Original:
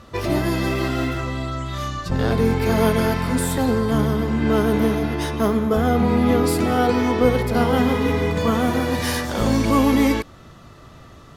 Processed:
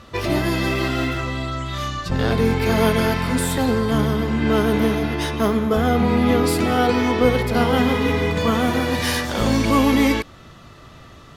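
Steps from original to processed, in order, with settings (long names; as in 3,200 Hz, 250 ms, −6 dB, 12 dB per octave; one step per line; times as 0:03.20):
parametric band 2,900 Hz +4.5 dB 1.7 octaves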